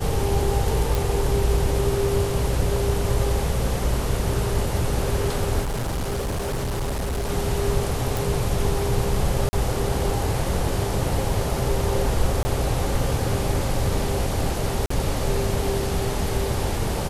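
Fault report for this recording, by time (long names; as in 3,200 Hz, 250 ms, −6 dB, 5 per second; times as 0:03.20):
0:00.95: click
0:05.61–0:07.30: clipping −22.5 dBFS
0:08.17: click
0:09.49–0:09.53: drop-out 40 ms
0:12.43–0:12.45: drop-out 20 ms
0:14.86–0:14.90: drop-out 44 ms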